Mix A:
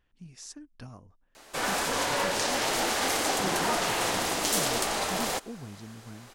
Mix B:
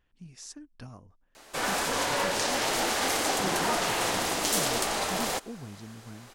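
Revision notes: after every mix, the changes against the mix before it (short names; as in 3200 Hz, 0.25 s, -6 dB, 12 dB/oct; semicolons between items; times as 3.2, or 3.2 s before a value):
none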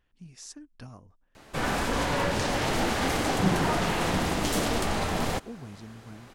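background: add tone controls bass +15 dB, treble -7 dB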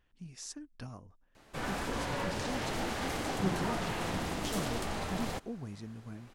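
background -8.5 dB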